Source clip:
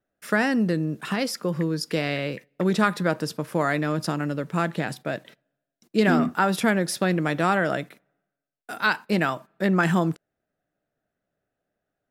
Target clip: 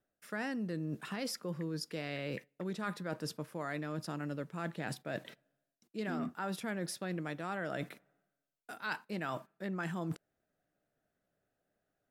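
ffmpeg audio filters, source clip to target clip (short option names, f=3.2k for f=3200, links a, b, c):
-af "areverse,acompressor=threshold=-34dB:ratio=6,areverse,volume=-2dB" -ar 44100 -c:a ac3 -b:a 128k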